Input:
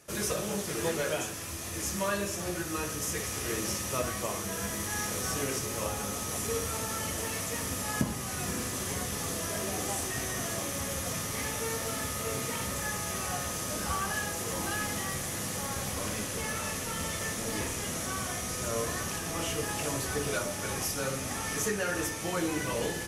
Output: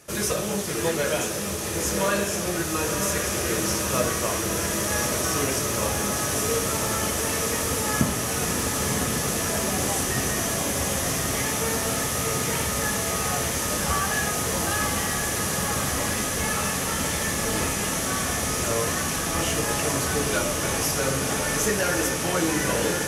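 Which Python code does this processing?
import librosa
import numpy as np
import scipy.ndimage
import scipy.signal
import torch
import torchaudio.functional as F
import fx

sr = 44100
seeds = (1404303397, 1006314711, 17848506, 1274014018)

y = fx.echo_diffused(x, sr, ms=1038, feedback_pct=72, wet_db=-4.5)
y = F.gain(torch.from_numpy(y), 6.0).numpy()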